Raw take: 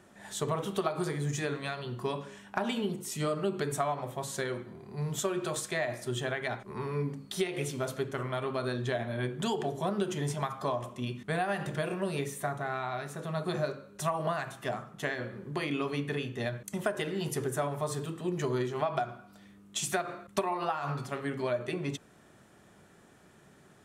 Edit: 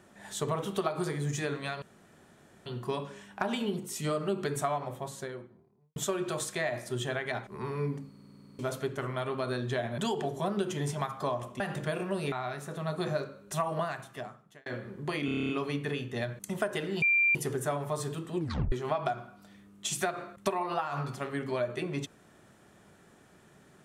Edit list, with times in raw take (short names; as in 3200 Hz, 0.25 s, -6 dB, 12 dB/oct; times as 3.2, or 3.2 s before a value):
1.82 insert room tone 0.84 s
3.87–5.12 studio fade out
7.25 stutter in place 0.05 s, 10 plays
9.14–9.39 cut
11.01–11.51 cut
12.23–12.8 cut
14.23–15.14 fade out linear
15.73 stutter 0.03 s, 9 plays
17.26 add tone 2370 Hz -21.5 dBFS 0.33 s
18.3 tape stop 0.33 s